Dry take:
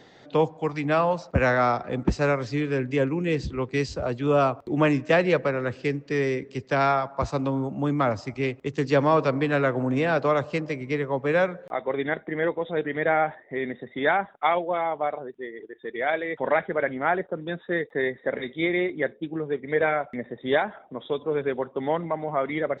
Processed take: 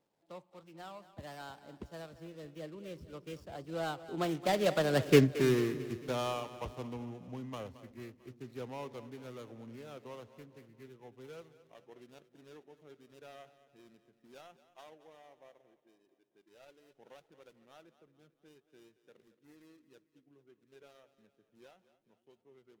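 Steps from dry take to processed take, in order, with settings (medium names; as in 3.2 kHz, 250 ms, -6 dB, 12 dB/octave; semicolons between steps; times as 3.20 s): median filter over 25 samples; Doppler pass-by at 5.16 s, 43 m/s, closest 5.9 m; treble shelf 2.6 kHz +11 dB; on a send: two-band feedback delay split 330 Hz, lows 307 ms, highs 223 ms, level -15 dB; on the sum: trim +5 dB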